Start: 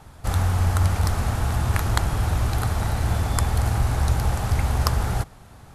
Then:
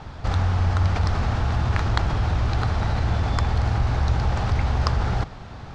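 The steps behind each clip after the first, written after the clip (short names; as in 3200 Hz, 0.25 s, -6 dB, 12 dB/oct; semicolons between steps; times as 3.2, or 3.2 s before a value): LPF 5300 Hz 24 dB/oct; in parallel at -3 dB: negative-ratio compressor -31 dBFS, ratio -1; on the sum: gain -1.5 dB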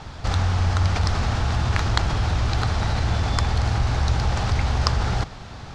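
high shelf 3300 Hz +10 dB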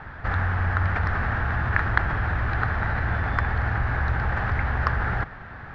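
synth low-pass 1700 Hz, resonance Q 4.4; gain -4 dB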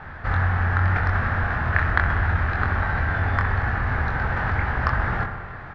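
doubler 23 ms -5 dB; dark delay 64 ms, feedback 77%, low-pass 2500 Hz, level -9.5 dB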